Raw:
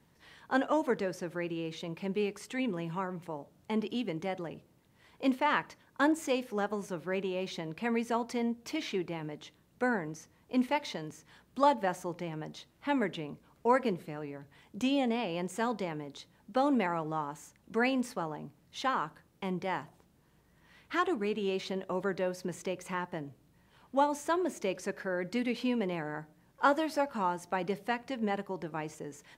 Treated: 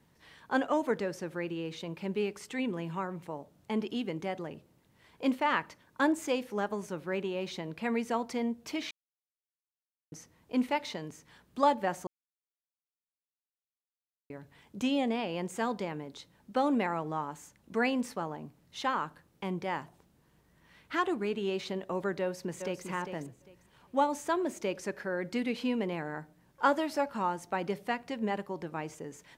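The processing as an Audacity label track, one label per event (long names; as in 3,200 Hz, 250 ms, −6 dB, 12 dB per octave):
8.910000	10.120000	silence
12.070000	14.300000	silence
22.200000	22.860000	delay throw 400 ms, feedback 20%, level −8 dB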